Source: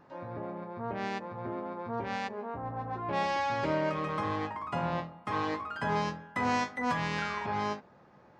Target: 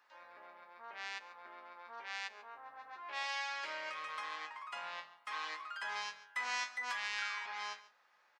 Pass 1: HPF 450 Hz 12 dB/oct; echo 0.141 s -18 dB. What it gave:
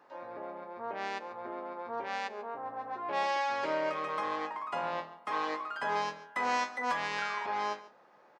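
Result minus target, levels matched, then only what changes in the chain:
500 Hz band +12.0 dB
change: HPF 1800 Hz 12 dB/oct

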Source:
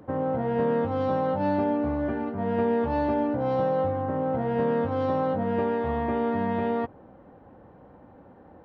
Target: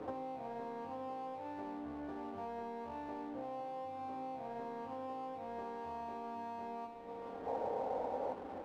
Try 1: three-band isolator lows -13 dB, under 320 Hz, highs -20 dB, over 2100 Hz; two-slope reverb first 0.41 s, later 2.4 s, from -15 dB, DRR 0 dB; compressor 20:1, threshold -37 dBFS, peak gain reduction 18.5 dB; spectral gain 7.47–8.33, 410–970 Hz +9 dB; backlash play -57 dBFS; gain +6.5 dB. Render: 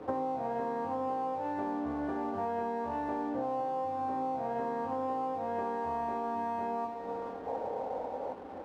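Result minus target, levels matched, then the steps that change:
compressor: peak gain reduction -9.5 dB
change: compressor 20:1, threshold -47 dBFS, peak gain reduction 28 dB

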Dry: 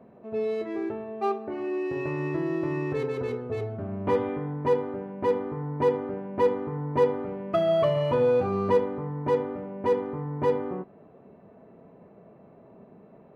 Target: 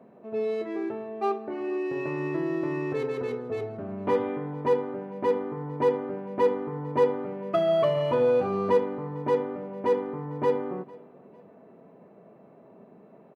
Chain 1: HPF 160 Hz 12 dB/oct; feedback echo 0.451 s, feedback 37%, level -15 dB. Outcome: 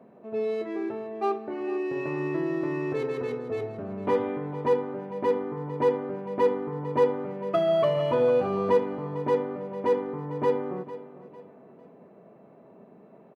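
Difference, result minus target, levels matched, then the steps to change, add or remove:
echo-to-direct +8 dB
change: feedback echo 0.451 s, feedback 37%, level -23 dB

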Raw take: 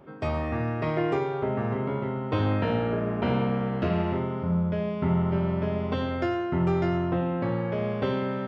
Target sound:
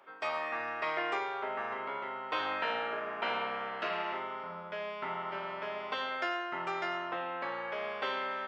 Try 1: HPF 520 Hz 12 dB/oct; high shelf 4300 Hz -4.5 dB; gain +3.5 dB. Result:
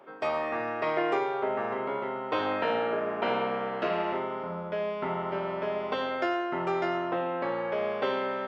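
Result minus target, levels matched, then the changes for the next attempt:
500 Hz band +4.5 dB
change: HPF 1100 Hz 12 dB/oct

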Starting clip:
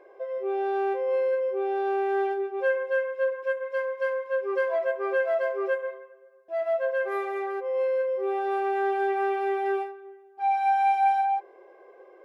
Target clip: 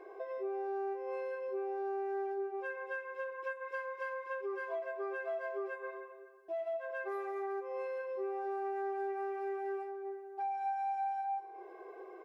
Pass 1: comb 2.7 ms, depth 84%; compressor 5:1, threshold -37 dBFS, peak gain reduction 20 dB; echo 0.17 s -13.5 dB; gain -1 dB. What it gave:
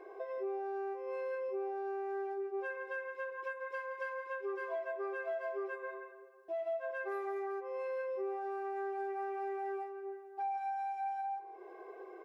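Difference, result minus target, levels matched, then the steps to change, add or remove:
echo 77 ms early
change: echo 0.247 s -13.5 dB

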